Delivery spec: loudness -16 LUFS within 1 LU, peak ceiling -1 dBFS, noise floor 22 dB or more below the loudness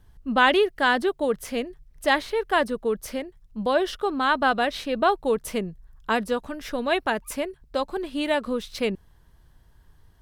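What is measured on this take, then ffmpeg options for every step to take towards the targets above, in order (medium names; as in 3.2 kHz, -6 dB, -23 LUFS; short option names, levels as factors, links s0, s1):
loudness -25.0 LUFS; peak level -5.0 dBFS; loudness target -16.0 LUFS
-> -af "volume=2.82,alimiter=limit=0.891:level=0:latency=1"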